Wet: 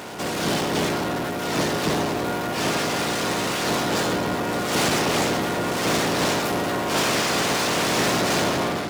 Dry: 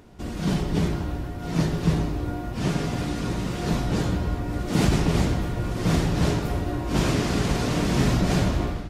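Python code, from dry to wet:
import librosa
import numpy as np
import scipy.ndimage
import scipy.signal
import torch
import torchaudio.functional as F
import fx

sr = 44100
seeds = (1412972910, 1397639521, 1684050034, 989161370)

y = fx.spec_clip(x, sr, under_db=16)
y = fx.power_curve(y, sr, exponent=0.5)
y = scipy.signal.sosfilt(scipy.signal.butter(2, 140.0, 'highpass', fs=sr, output='sos'), y)
y = F.gain(torch.from_numpy(y), -5.0).numpy()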